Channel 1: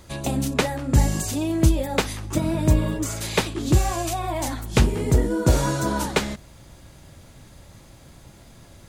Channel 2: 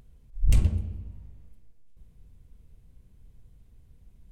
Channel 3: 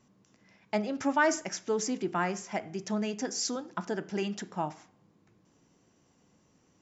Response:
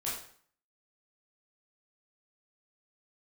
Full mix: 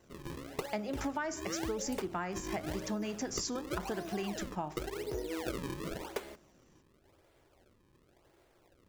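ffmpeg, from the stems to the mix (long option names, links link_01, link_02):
-filter_complex "[0:a]lowpass=5500,lowshelf=frequency=280:width_type=q:width=3:gain=-9,acrusher=samples=36:mix=1:aa=0.000001:lfo=1:lforange=57.6:lforate=0.92,volume=-15.5dB[link_01];[1:a]aemphasis=mode=production:type=bsi,adelay=1400,volume=-18.5dB[link_02];[2:a]volume=-1dB[link_03];[link_01][link_02][link_03]amix=inputs=3:normalize=0,acompressor=threshold=-32dB:ratio=12"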